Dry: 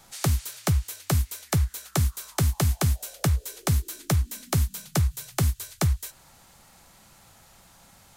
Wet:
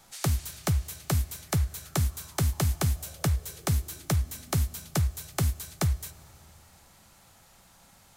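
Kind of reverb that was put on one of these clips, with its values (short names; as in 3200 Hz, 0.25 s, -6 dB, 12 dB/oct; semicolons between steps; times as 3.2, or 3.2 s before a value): Schroeder reverb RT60 3.2 s, combs from 25 ms, DRR 19 dB; gain -3 dB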